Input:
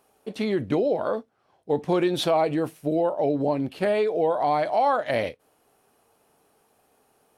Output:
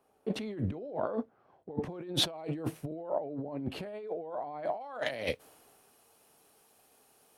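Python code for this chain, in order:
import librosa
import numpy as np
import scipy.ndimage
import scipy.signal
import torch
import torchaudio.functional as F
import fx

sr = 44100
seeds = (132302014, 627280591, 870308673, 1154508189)

y = fx.high_shelf(x, sr, hz=2100.0, db=fx.steps((0.0, -9.5), (4.8, 3.0)))
y = fx.over_compress(y, sr, threshold_db=-34.0, ratio=-1.0)
y = fx.band_widen(y, sr, depth_pct=40)
y = y * librosa.db_to_amplitude(-3.0)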